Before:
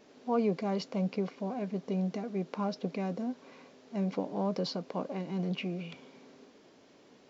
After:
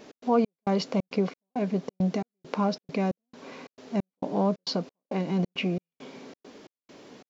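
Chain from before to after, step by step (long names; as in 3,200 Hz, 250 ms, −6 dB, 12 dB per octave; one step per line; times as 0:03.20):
in parallel at −2 dB: downward compressor, threshold −38 dBFS, peak gain reduction 13 dB
on the sum: gate pattern "x.xx..xx" 135 BPM −60 dB
level +5 dB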